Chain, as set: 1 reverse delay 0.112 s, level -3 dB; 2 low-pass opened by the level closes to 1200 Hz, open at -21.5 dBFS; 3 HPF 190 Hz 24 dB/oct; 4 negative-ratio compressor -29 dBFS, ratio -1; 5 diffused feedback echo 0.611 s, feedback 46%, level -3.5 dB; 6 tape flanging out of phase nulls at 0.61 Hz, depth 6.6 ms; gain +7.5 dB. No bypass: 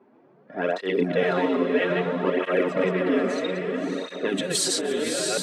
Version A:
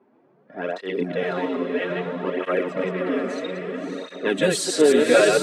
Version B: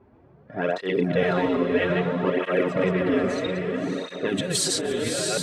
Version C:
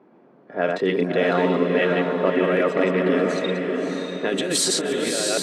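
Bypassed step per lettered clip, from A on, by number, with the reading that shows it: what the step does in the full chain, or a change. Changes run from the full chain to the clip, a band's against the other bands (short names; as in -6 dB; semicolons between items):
4, crest factor change +4.0 dB; 3, 125 Hz band +5.0 dB; 6, loudness change +3.0 LU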